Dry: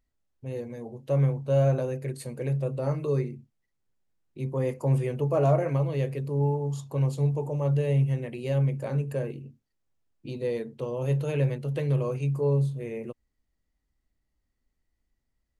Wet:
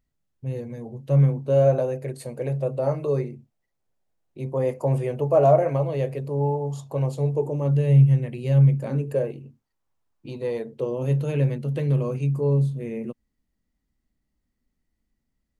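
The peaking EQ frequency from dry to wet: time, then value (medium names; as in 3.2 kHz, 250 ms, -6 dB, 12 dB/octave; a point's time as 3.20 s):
peaking EQ +9 dB 1 oct
1.15 s 150 Hz
1.76 s 660 Hz
7.17 s 660 Hz
7.94 s 140 Hz
8.71 s 140 Hz
9.45 s 990 Hz
10.50 s 990 Hz
11.08 s 210 Hz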